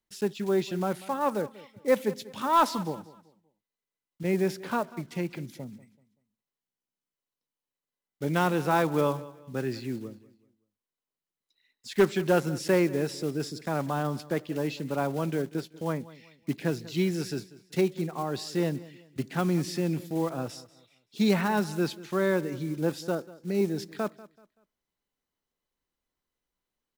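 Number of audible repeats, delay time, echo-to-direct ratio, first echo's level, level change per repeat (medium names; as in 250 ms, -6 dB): 2, 191 ms, -18.5 dB, -19.0 dB, -9.5 dB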